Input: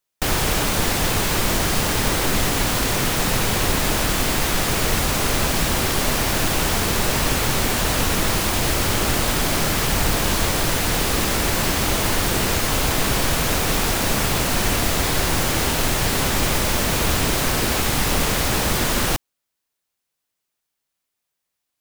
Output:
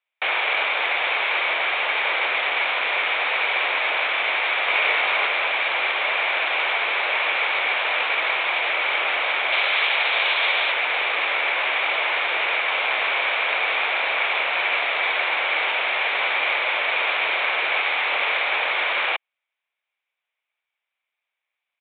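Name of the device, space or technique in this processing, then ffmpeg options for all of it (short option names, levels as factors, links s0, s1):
musical greeting card: -filter_complex "[0:a]asettb=1/sr,asplit=3[s0][s1][s2];[s0]atrim=end=4.654[s3];[s1]atrim=start=4.65:end=5.26,asetpts=PTS-STARTPTS,afade=t=in:d=0.004:c=qsin,afade=t=out:st=0.606:d=0.004:c=qsin,asplit=2[s4][s5];[s5]adelay=20,volume=0.75[s6];[s4][s6]amix=inputs=2:normalize=0,atrim=end_sample=26901[s7];[s2]atrim=start=5.256[s8];[s3][s7]acrossfade=d=0.004:c1=hsin:c2=qsin[s9];[s9][s8]acrossfade=d=0.004:c1=qsin:c2=hsin,asettb=1/sr,asplit=3[s10][s11][s12];[s10]atrim=end=9.524[s13];[s11]atrim=start=9.52:end=10.72,asetpts=PTS-STARTPTS,afade=t=in:d=0.004:c=qsin,afade=t=out:st=1.196:d=0.004:c=qsin,bass=f=250:g=-7,treble=f=4000:g=15[s14];[s12]atrim=start=10.716[s15];[s13][s14]acrossfade=d=0.004:c1=hsin:c2=qsin[s16];[s16][s15]acrossfade=d=0.004:c1=qsin:c2=hsin,aresample=8000,aresample=44100,highpass=f=570:w=0.5412,highpass=f=570:w=1.3066,equalizer=f=2300:t=o:w=0.3:g=12"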